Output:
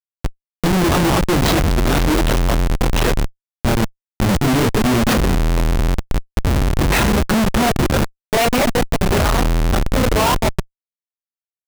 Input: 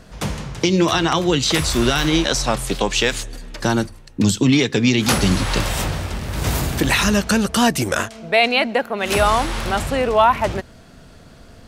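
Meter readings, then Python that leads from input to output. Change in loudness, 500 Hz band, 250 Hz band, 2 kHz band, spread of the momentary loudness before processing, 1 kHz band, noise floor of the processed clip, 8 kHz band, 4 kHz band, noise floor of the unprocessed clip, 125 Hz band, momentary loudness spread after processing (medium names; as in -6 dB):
+1.0 dB, +0.5 dB, +1.0 dB, -1.5 dB, 9 LU, -0.5 dB, under -85 dBFS, -2.0 dB, -3.0 dB, -44 dBFS, +4.5 dB, 7 LU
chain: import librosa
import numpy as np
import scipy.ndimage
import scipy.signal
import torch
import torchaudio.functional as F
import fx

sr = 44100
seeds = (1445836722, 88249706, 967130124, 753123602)

y = fx.chorus_voices(x, sr, voices=6, hz=0.96, base_ms=25, depth_ms=3.0, mix_pct=50)
y = fx.schmitt(y, sr, flips_db=-18.5)
y = y * 10.0 ** (6.5 / 20.0)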